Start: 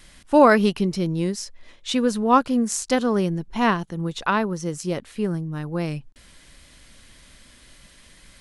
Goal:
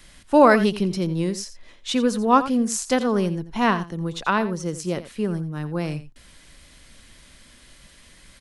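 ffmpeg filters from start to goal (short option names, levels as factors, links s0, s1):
-filter_complex "[0:a]acrossover=split=150|4300[s0][s1][s2];[s0]aeval=exprs='clip(val(0),-1,0.0141)':c=same[s3];[s3][s1][s2]amix=inputs=3:normalize=0,aecho=1:1:86:0.2"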